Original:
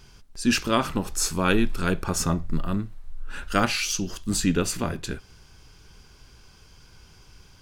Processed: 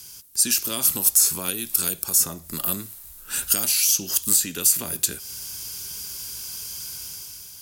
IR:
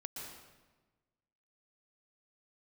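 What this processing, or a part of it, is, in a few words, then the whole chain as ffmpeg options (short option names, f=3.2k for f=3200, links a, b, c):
FM broadcast chain: -filter_complex "[0:a]highpass=68,dynaudnorm=f=110:g=11:m=8dB,acrossover=split=310|680|3400[a][b][c][d];[a]acompressor=threshold=-33dB:ratio=4[e];[b]acompressor=threshold=-32dB:ratio=4[f];[c]acompressor=threshold=-37dB:ratio=4[g];[d]acompressor=threshold=-36dB:ratio=4[h];[e][f][g][h]amix=inputs=4:normalize=0,aemphasis=mode=production:type=75fm,alimiter=limit=-13.5dB:level=0:latency=1:release=427,asoftclip=type=hard:threshold=-17.5dB,lowpass=f=15k:w=0.5412,lowpass=f=15k:w=1.3066,aemphasis=mode=production:type=75fm,volume=-3dB"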